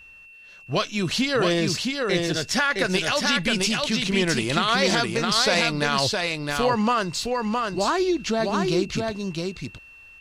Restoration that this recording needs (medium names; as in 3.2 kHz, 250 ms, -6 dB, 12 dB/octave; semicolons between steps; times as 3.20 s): band-stop 2.7 kHz, Q 30; inverse comb 664 ms -3.5 dB